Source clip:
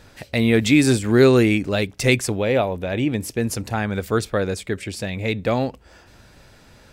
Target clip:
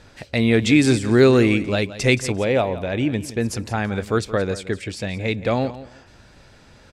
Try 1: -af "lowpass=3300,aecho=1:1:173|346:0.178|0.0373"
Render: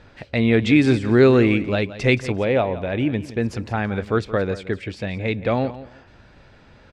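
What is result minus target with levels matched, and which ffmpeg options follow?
8 kHz band -12.5 dB
-af "lowpass=8200,aecho=1:1:173|346:0.178|0.0373"

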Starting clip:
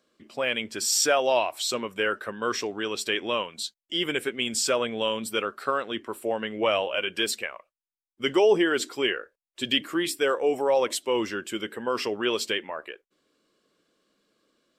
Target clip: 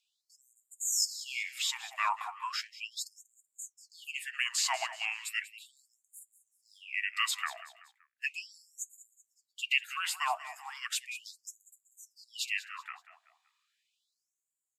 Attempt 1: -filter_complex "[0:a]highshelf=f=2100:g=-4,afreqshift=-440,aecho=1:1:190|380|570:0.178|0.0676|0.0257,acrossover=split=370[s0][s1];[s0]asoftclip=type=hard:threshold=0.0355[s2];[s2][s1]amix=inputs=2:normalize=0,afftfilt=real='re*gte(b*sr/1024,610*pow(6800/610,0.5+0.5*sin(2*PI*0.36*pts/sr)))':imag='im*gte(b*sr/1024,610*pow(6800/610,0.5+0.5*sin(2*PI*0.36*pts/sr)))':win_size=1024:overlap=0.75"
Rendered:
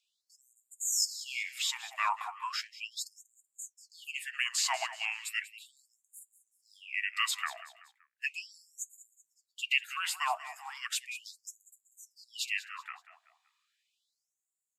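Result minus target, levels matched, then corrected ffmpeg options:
hard clipper: distortion -4 dB
-filter_complex "[0:a]highshelf=f=2100:g=-4,afreqshift=-440,aecho=1:1:190|380|570:0.178|0.0676|0.0257,acrossover=split=370[s0][s1];[s0]asoftclip=type=hard:threshold=0.0133[s2];[s2][s1]amix=inputs=2:normalize=0,afftfilt=real='re*gte(b*sr/1024,610*pow(6800/610,0.5+0.5*sin(2*PI*0.36*pts/sr)))':imag='im*gte(b*sr/1024,610*pow(6800/610,0.5+0.5*sin(2*PI*0.36*pts/sr)))':win_size=1024:overlap=0.75"

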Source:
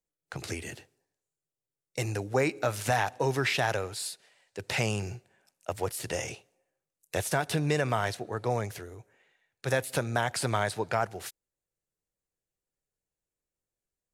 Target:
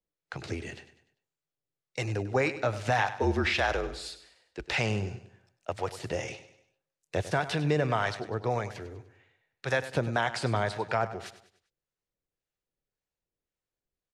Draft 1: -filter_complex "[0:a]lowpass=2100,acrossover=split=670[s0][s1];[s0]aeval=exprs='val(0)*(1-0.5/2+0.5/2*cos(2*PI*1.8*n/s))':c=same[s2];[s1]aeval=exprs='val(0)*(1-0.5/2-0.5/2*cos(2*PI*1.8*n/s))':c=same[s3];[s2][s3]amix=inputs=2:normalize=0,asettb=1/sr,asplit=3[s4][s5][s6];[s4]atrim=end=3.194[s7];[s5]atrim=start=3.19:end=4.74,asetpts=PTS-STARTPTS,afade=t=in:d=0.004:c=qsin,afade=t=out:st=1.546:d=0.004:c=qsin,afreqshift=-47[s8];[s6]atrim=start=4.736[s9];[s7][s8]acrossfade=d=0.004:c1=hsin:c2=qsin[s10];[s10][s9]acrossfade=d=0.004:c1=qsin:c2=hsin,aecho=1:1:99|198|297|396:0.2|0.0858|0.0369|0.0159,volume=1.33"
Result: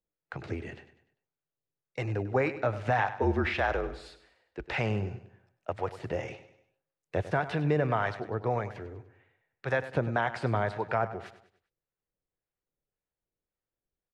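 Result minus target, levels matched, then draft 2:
4 kHz band -8.0 dB
-filter_complex "[0:a]lowpass=4900,acrossover=split=670[s0][s1];[s0]aeval=exprs='val(0)*(1-0.5/2+0.5/2*cos(2*PI*1.8*n/s))':c=same[s2];[s1]aeval=exprs='val(0)*(1-0.5/2-0.5/2*cos(2*PI*1.8*n/s))':c=same[s3];[s2][s3]amix=inputs=2:normalize=0,asettb=1/sr,asplit=3[s4][s5][s6];[s4]atrim=end=3.194[s7];[s5]atrim=start=3.19:end=4.74,asetpts=PTS-STARTPTS,afade=t=in:d=0.004:c=qsin,afade=t=out:st=1.546:d=0.004:c=qsin,afreqshift=-47[s8];[s6]atrim=start=4.736[s9];[s7][s8]acrossfade=d=0.004:c1=hsin:c2=qsin[s10];[s10][s9]acrossfade=d=0.004:c1=qsin:c2=hsin,aecho=1:1:99|198|297|396:0.2|0.0858|0.0369|0.0159,volume=1.33"

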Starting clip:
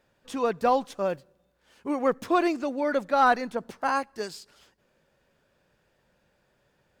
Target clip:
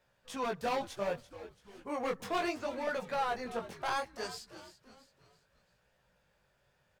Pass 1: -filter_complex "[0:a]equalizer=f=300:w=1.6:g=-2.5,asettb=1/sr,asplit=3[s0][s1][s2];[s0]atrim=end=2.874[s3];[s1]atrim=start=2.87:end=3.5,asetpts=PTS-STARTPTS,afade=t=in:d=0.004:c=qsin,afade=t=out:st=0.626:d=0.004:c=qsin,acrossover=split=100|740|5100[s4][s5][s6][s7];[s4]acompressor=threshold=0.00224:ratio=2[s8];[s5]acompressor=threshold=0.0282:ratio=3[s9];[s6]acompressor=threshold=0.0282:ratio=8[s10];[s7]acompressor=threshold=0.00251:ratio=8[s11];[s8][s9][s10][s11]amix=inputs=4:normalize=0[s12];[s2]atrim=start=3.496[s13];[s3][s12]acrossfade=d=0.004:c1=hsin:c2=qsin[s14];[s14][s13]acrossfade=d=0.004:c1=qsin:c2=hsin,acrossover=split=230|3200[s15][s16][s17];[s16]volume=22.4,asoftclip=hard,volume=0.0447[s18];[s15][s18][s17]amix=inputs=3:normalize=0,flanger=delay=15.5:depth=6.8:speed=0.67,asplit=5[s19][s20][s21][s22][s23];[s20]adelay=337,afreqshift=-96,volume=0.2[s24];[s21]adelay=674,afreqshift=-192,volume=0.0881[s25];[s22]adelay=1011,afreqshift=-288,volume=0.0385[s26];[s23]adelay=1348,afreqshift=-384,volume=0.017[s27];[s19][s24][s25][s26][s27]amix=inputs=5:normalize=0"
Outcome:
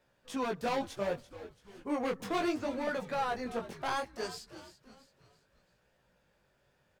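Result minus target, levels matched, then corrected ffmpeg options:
250 Hz band +4.5 dB
-filter_complex "[0:a]equalizer=f=300:w=1.6:g=-10.5,asettb=1/sr,asplit=3[s0][s1][s2];[s0]atrim=end=2.874[s3];[s1]atrim=start=2.87:end=3.5,asetpts=PTS-STARTPTS,afade=t=in:d=0.004:c=qsin,afade=t=out:st=0.626:d=0.004:c=qsin,acrossover=split=100|740|5100[s4][s5][s6][s7];[s4]acompressor=threshold=0.00224:ratio=2[s8];[s5]acompressor=threshold=0.0282:ratio=3[s9];[s6]acompressor=threshold=0.0282:ratio=8[s10];[s7]acompressor=threshold=0.00251:ratio=8[s11];[s8][s9][s10][s11]amix=inputs=4:normalize=0[s12];[s2]atrim=start=3.496[s13];[s3][s12]acrossfade=d=0.004:c1=hsin:c2=qsin[s14];[s14][s13]acrossfade=d=0.004:c1=qsin:c2=hsin,acrossover=split=230|3200[s15][s16][s17];[s16]volume=22.4,asoftclip=hard,volume=0.0447[s18];[s15][s18][s17]amix=inputs=3:normalize=0,flanger=delay=15.5:depth=6.8:speed=0.67,asplit=5[s19][s20][s21][s22][s23];[s20]adelay=337,afreqshift=-96,volume=0.2[s24];[s21]adelay=674,afreqshift=-192,volume=0.0881[s25];[s22]adelay=1011,afreqshift=-288,volume=0.0385[s26];[s23]adelay=1348,afreqshift=-384,volume=0.017[s27];[s19][s24][s25][s26][s27]amix=inputs=5:normalize=0"

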